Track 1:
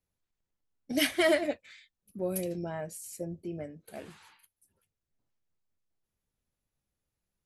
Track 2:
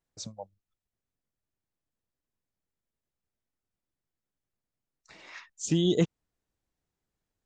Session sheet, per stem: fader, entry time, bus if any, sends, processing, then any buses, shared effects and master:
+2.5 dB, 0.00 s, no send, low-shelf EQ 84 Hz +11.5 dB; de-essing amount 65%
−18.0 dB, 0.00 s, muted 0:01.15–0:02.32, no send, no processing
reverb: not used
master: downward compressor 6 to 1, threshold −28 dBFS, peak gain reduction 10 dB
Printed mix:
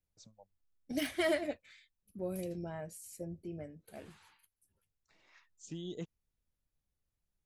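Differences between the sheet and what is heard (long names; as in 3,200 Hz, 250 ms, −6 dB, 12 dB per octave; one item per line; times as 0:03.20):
stem 1 +2.5 dB → −6.5 dB
master: missing downward compressor 6 to 1, threshold −28 dBFS, peak gain reduction 10 dB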